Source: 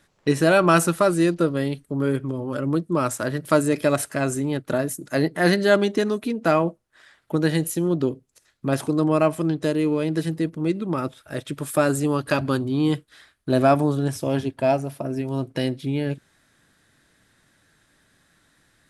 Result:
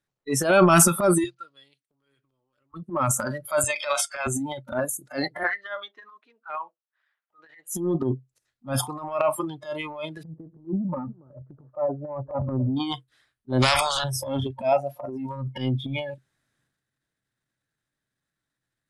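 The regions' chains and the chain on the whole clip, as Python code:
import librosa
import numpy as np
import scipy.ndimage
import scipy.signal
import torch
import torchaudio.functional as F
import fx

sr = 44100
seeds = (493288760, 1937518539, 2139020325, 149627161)

y = fx.chain(x, sr, fx.lowpass(hz=4200.0, slope=12),
    fx.differentiator(), at=(1.24, 2.74))
y = fx.chain(y, sr, fx.bandpass_edges(low_hz=700.0, high_hz=4400.0),
    fx.high_shelf(hz=3300.0, db=11.5), at=(3.64, 4.27))
y = fx.chain(y, sr, fx.highpass(hz=1200.0, slope=12),
    fx.spacing_loss(db_at_10k=33), at=(5.43, 7.68))
y = fx.chain(y, sr, fx.gaussian_blur(sigma=9.4),
    fx.echo_single(ms=280, db=-14.0), at=(10.23, 12.77))
y = fx.chain(y, sr, fx.lowpass(hz=6300.0, slope=12),
    fx.spectral_comp(ratio=4.0), at=(13.62, 14.04))
y = fx.noise_reduce_blind(y, sr, reduce_db=25)
y = fx.peak_eq(y, sr, hz=130.0, db=10.5, octaves=0.22)
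y = fx.transient(y, sr, attack_db=-11, sustain_db=9)
y = y * 10.0 ** (1.5 / 20.0)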